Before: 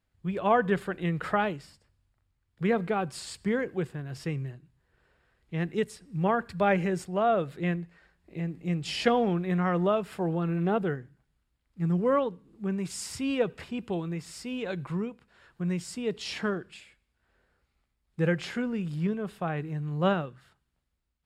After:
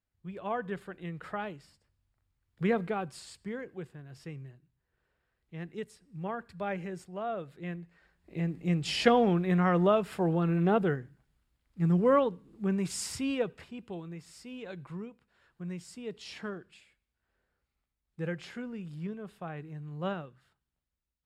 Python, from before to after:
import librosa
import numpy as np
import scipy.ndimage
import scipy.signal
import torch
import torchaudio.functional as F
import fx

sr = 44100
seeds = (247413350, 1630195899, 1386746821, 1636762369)

y = fx.gain(x, sr, db=fx.line((1.31, -10.5), (2.62, -1.0), (3.48, -10.5), (7.62, -10.5), (8.42, 1.0), (13.07, 1.0), (13.74, -9.0)))